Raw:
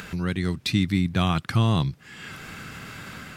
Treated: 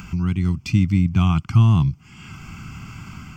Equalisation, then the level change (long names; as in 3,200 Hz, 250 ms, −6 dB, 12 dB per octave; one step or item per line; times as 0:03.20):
low-shelf EQ 210 Hz +11 dB
phaser with its sweep stopped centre 2,600 Hz, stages 8
0.0 dB